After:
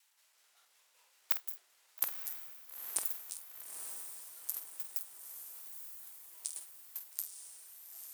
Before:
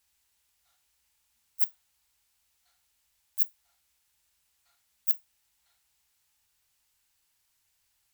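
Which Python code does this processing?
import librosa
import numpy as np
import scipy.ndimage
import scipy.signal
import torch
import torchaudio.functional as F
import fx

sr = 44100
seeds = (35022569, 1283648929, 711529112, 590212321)

p1 = fx.block_reorder(x, sr, ms=109.0, group=4)
p2 = fx.high_shelf(p1, sr, hz=12000.0, db=5.0)
p3 = fx.leveller(p2, sr, passes=1)
p4 = fx.over_compress(p3, sr, threshold_db=-23.0, ratio=-0.5)
p5 = fx.riaa(p4, sr, side='recording')
p6 = fx.level_steps(p5, sr, step_db=12)
p7 = fx.filter_lfo_bandpass(p6, sr, shape='saw_down', hz=5.3, low_hz=730.0, high_hz=1500.0, q=0.81)
p8 = fx.echo_pitch(p7, sr, ms=172, semitones=-6, count=2, db_per_echo=-3.0)
p9 = fx.doubler(p8, sr, ms=48.0, db=-10)
p10 = p9 + fx.echo_diffused(p9, sr, ms=908, feedback_pct=55, wet_db=-6, dry=0)
y = p10 * 10.0 ** (9.5 / 20.0)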